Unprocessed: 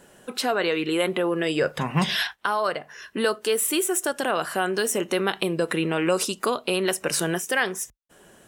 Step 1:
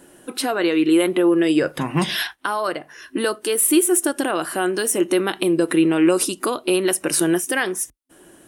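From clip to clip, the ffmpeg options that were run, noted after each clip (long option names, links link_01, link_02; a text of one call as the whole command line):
ffmpeg -i in.wav -af "superequalizer=6b=3.16:16b=2.24,volume=1dB" out.wav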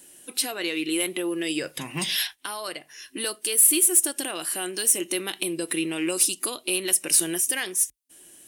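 ffmpeg -i in.wav -af "aexciter=amount=2.8:drive=8.4:freq=2000,volume=-12dB" out.wav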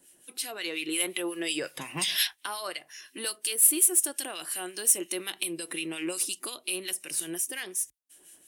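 ffmpeg -i in.wav -filter_complex "[0:a]acrossover=split=480[link_01][link_02];[link_02]dynaudnorm=framelen=440:gausssize=3:maxgain=8dB[link_03];[link_01][link_03]amix=inputs=2:normalize=0,acrossover=split=1500[link_04][link_05];[link_04]aeval=exprs='val(0)*(1-0.7/2+0.7/2*cos(2*PI*5.6*n/s))':channel_layout=same[link_06];[link_05]aeval=exprs='val(0)*(1-0.7/2-0.7/2*cos(2*PI*5.6*n/s))':channel_layout=same[link_07];[link_06][link_07]amix=inputs=2:normalize=0,volume=-5.5dB" out.wav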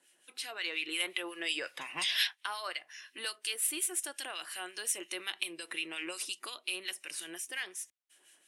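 ffmpeg -i in.wav -af "bandpass=frequency=1900:width_type=q:width=0.63:csg=0" out.wav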